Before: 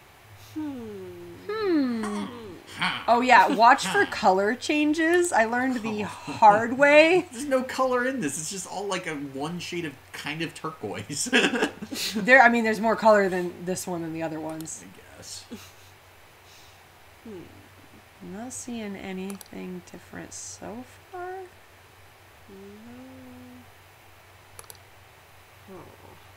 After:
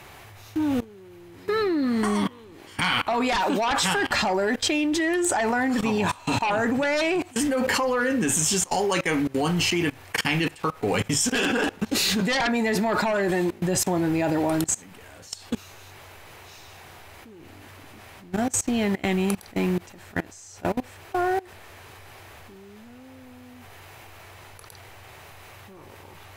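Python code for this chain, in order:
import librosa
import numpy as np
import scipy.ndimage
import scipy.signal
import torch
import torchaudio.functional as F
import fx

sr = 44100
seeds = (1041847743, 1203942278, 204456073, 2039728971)

y = fx.fold_sine(x, sr, drive_db=10, ceiling_db=-2.5)
y = fx.level_steps(y, sr, step_db=23)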